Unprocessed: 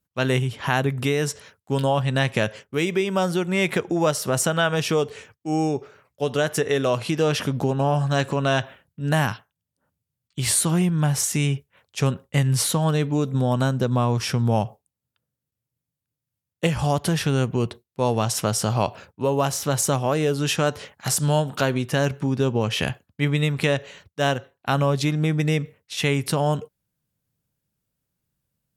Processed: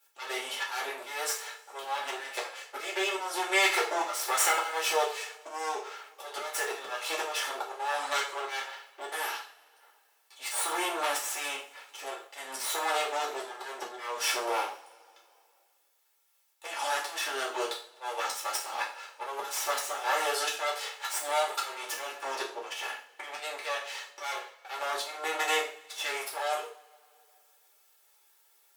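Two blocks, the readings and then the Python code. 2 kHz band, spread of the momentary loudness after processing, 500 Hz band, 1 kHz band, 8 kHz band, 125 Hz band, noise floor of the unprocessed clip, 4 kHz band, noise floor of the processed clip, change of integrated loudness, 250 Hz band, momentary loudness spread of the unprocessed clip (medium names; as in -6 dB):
-3.5 dB, 12 LU, -12.0 dB, -3.5 dB, -6.5 dB, under -40 dB, under -85 dBFS, -4.0 dB, -67 dBFS, -9.0 dB, -24.5 dB, 6 LU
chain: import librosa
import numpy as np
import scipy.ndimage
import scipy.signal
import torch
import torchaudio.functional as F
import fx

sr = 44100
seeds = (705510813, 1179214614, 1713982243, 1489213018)

y = fx.lower_of_two(x, sr, delay_ms=2.3)
y = scipy.signal.sosfilt(scipy.signal.butter(4, 610.0, 'highpass', fs=sr, output='sos'), y)
y = fx.auto_swell(y, sr, attack_ms=438.0)
y = fx.rev_double_slope(y, sr, seeds[0], early_s=0.36, late_s=1.7, knee_db=-26, drr_db=-6.0)
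y = fx.band_squash(y, sr, depth_pct=40)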